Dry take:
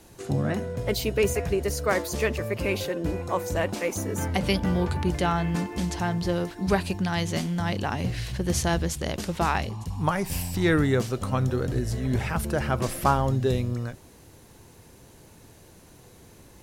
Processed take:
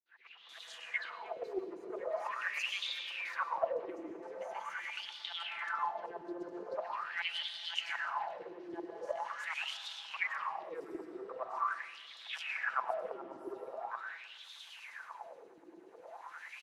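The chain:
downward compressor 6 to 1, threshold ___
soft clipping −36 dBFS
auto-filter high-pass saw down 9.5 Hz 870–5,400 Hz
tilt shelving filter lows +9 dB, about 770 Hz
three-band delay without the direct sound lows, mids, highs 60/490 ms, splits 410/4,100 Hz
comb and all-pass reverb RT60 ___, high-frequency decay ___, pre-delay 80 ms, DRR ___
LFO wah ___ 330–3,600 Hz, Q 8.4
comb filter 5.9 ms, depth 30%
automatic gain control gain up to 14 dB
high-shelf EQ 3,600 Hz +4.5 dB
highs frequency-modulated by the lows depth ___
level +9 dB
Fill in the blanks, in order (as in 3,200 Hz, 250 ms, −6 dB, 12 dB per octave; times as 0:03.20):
−35 dBFS, 2.7 s, 0.7×, 1.5 dB, 0.43 Hz, 0.15 ms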